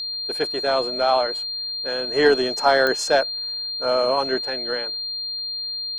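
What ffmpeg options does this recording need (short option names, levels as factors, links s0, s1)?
-af "adeclick=t=4,bandreject=f=4200:w=30"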